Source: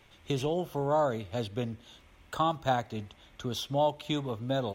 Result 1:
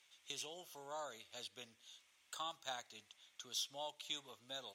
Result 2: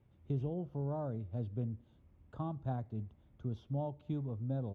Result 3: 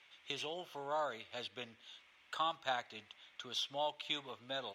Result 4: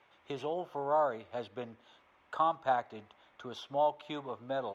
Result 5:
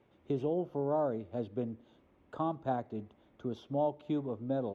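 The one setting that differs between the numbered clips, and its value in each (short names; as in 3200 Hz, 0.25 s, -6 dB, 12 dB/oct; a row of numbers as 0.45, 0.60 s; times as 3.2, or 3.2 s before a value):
band-pass, frequency: 7200, 110, 2700, 1000, 320 Hz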